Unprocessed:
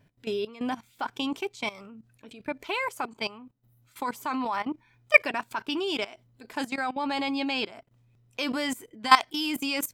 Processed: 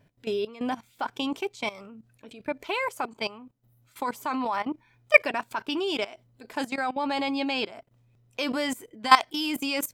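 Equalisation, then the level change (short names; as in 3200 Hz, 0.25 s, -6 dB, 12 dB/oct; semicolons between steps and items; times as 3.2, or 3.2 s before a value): bell 570 Hz +3.5 dB 0.98 oct; 0.0 dB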